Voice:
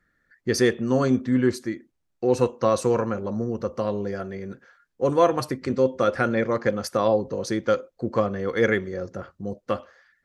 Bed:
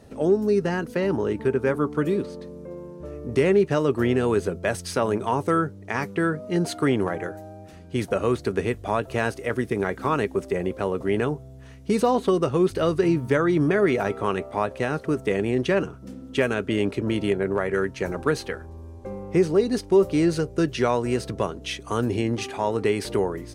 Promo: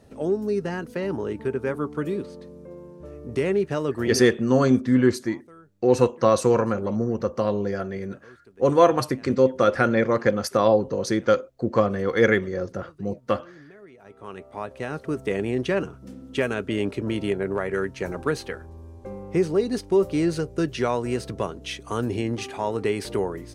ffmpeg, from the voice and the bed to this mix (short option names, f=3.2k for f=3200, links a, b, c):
-filter_complex "[0:a]adelay=3600,volume=2.5dB[a];[1:a]volume=21.5dB,afade=t=out:st=4.09:d=0.22:silence=0.0668344,afade=t=in:st=14.01:d=1.31:silence=0.0530884[b];[a][b]amix=inputs=2:normalize=0"